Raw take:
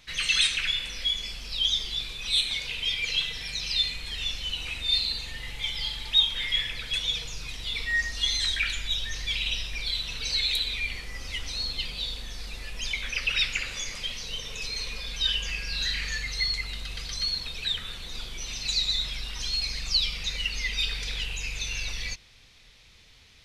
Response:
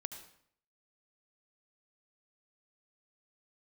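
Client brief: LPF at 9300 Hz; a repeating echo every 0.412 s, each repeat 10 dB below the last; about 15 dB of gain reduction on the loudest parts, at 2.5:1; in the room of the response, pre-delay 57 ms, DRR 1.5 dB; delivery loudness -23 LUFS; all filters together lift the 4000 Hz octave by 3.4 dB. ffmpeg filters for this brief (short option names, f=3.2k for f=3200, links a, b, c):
-filter_complex "[0:a]lowpass=9.3k,equalizer=f=4k:t=o:g=4,acompressor=threshold=-37dB:ratio=2.5,aecho=1:1:412|824|1236|1648:0.316|0.101|0.0324|0.0104,asplit=2[a][b];[1:a]atrim=start_sample=2205,adelay=57[c];[b][c]afir=irnorm=-1:irlink=0,volume=0.5dB[d];[a][d]amix=inputs=2:normalize=0,volume=8.5dB"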